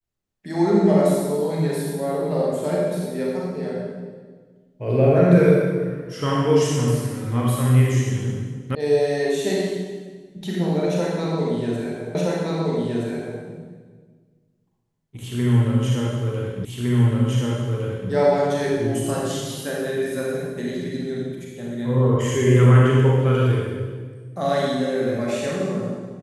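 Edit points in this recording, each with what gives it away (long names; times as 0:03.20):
0:08.75: cut off before it has died away
0:12.15: the same again, the last 1.27 s
0:16.65: the same again, the last 1.46 s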